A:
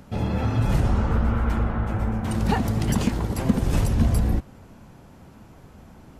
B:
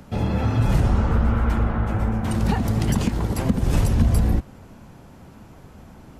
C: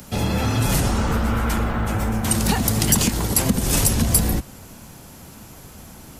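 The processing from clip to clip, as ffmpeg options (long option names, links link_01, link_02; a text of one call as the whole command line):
ffmpeg -i in.wav -filter_complex "[0:a]acrossover=split=180[link_01][link_02];[link_02]acompressor=threshold=-25dB:ratio=6[link_03];[link_01][link_03]amix=inputs=2:normalize=0,volume=2.5dB" out.wav
ffmpeg -i in.wav -filter_complex "[0:a]highshelf=frequency=5800:gain=11,acrossover=split=150|5300[link_01][link_02][link_03];[link_01]asoftclip=type=tanh:threshold=-21.5dB[link_04];[link_04][link_02][link_03]amix=inputs=3:normalize=0,highshelf=frequency=2600:gain=9.5,volume=1.5dB" out.wav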